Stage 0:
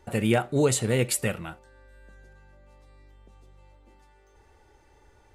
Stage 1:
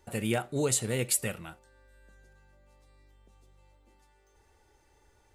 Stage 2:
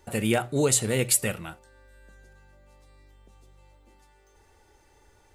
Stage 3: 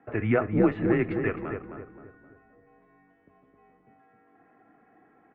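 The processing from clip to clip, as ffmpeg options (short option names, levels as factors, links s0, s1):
-af "highshelf=f=4500:g=9,volume=0.447"
-af "bandreject=f=60:t=h:w=6,bandreject=f=120:t=h:w=6,volume=1.88"
-filter_complex "[0:a]asplit=2[s0][s1];[s1]adelay=263,lowpass=f=1300:p=1,volume=0.596,asplit=2[s2][s3];[s3]adelay=263,lowpass=f=1300:p=1,volume=0.44,asplit=2[s4][s5];[s5]adelay=263,lowpass=f=1300:p=1,volume=0.44,asplit=2[s6][s7];[s7]adelay=263,lowpass=f=1300:p=1,volume=0.44,asplit=2[s8][s9];[s9]adelay=263,lowpass=f=1300:p=1,volume=0.44[s10];[s2][s4][s6][s8][s10]amix=inputs=5:normalize=0[s11];[s0][s11]amix=inputs=2:normalize=0,highpass=f=230:t=q:w=0.5412,highpass=f=230:t=q:w=1.307,lowpass=f=2200:t=q:w=0.5176,lowpass=f=2200:t=q:w=0.7071,lowpass=f=2200:t=q:w=1.932,afreqshift=-110,volume=1.26"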